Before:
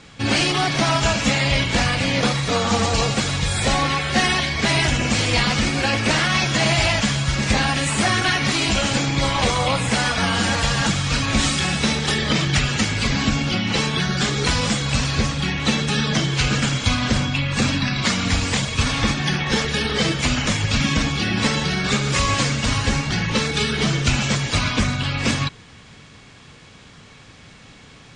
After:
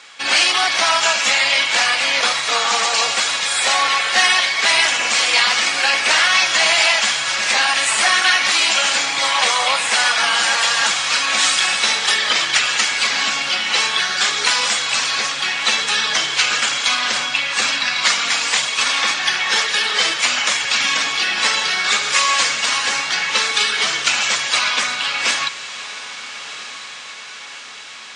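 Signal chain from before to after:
high-pass filter 940 Hz 12 dB per octave
on a send: feedback delay with all-pass diffusion 1,311 ms, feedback 61%, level −14 dB
on the sum: level +6.5 dB

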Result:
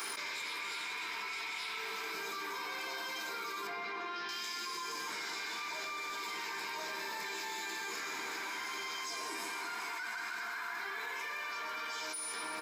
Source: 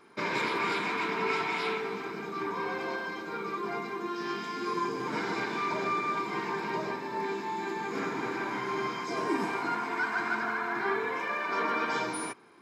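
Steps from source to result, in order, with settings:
first difference
double-tracking delay 13 ms −9 dB
soft clipping −34 dBFS, distortion −23 dB
0:03.67–0:04.29: high-frequency loss of the air 240 metres
on a send at −6 dB: convolution reverb RT60 2.1 s, pre-delay 6 ms
on the sum: envelope flattener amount 100%

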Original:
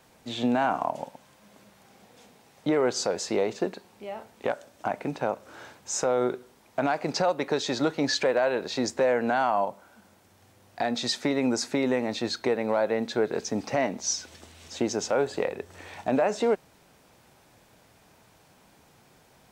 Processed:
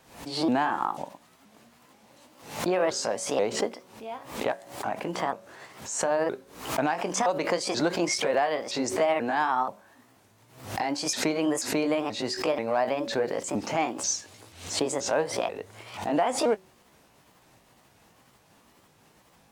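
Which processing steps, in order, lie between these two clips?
pitch shifter swept by a sawtooth +5 semitones, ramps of 484 ms
hum removal 187.7 Hz, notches 3
background raised ahead of every attack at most 100 dB per second

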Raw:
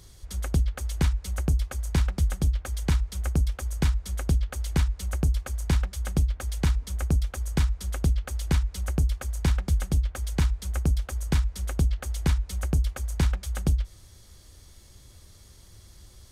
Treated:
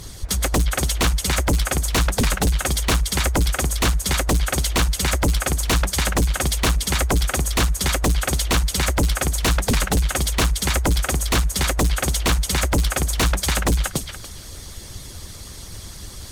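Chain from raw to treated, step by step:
feedback echo with a high-pass in the loop 288 ms, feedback 23%, high-pass 920 Hz, level −3 dB
harmonic and percussive parts rebalanced harmonic −13 dB
sine wavefolder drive 16 dB, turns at −14 dBFS

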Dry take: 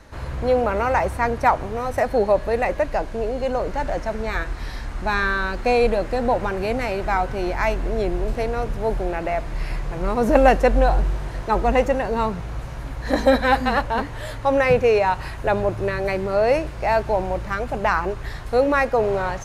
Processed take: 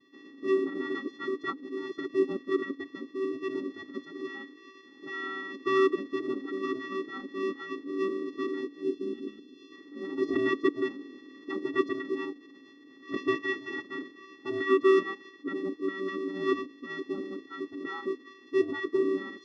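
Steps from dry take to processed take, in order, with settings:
channel vocoder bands 8, square 384 Hz
formants moved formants −6 semitones
gain on a spectral selection 0:08.83–0:09.72, 500–2,600 Hz −13 dB
level −8.5 dB

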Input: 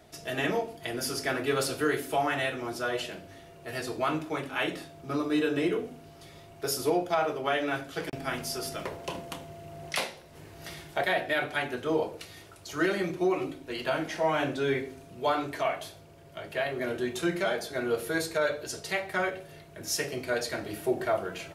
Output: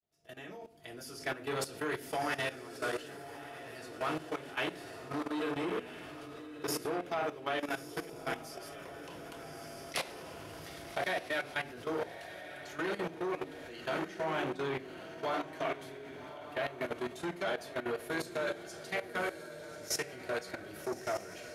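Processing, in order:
fade in at the beginning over 1.30 s
feedback delay with all-pass diffusion 1,230 ms, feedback 43%, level −6 dB
output level in coarse steps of 15 dB
saturating transformer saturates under 1,200 Hz
level −1.5 dB

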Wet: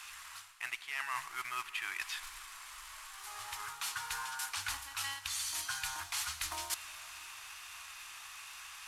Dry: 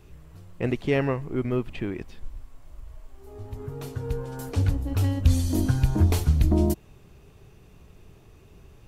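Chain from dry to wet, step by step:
variable-slope delta modulation 64 kbit/s
inverse Chebyshev high-pass filter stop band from 540 Hz, stop band 40 dB
reversed playback
downward compressor 10 to 1, threshold −51 dBFS, peak gain reduction 22.5 dB
reversed playback
convolution reverb RT60 5.5 s, pre-delay 8 ms, DRR 13.5 dB
level +15.5 dB

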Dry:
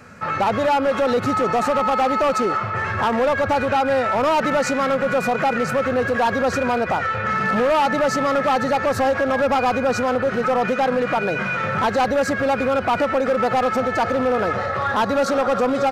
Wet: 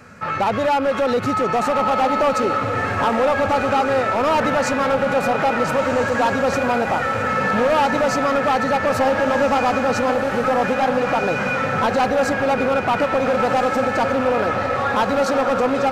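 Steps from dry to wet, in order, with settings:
loose part that buzzes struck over −40 dBFS, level −31 dBFS
feedback delay with all-pass diffusion 1,460 ms, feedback 45%, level −6.5 dB

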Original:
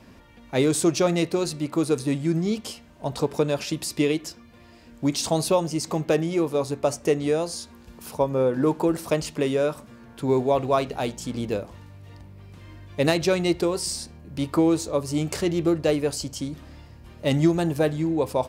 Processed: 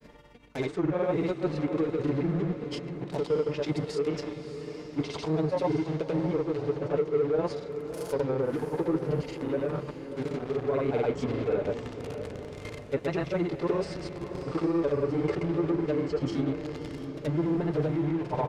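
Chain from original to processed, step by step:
comb filter 6.8 ms, depth 40%
hollow resonant body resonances 430/2,100 Hz, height 9 dB, ringing for 35 ms
reversed playback
downward compressor 5 to 1, threshold −26 dBFS, peak gain reduction 17 dB
reversed playback
granular cloud 84 ms, grains 20 per second, spray 27 ms, pitch spread up and down by 0 semitones
in parallel at −8 dB: log-companded quantiser 2 bits
on the sum: treble cut that deepens with the level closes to 1,700 Hz, closed at −23.5 dBFS
granular cloud, pitch spread up and down by 0 semitones
feedback delay with all-pass diffusion 631 ms, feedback 48%, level −9.5 dB

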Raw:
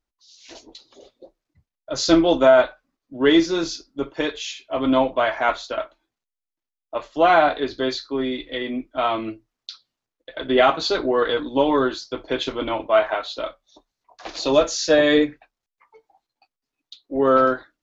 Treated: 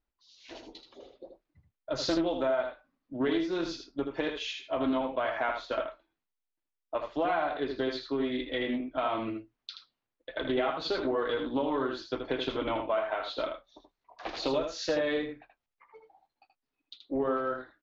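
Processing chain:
low-pass filter 3,400 Hz 12 dB per octave
downward compressor 6 to 1, threshold −25 dBFS, peak gain reduction 14.5 dB
on a send: single-tap delay 79 ms −6.5 dB
on the sum: highs frequency-modulated by the lows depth 0.12 ms
level −2.5 dB

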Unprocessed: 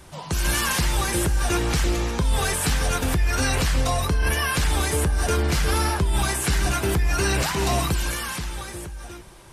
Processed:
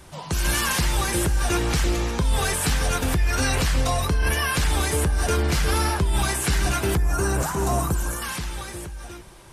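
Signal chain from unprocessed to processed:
0:06.97–0:08.22: flat-topped bell 3,100 Hz −12 dB

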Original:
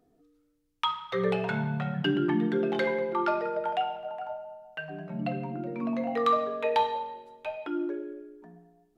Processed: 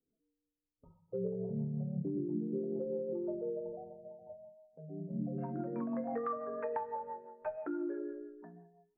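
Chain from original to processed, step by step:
noise reduction from a noise print of the clip's start 18 dB
elliptic low-pass filter 530 Hz, stop band 70 dB, from 0:05.37 1,700 Hz
downward compressor 6 to 1, threshold −32 dBFS, peak gain reduction 11 dB
rotating-speaker cabinet horn 6 Hz

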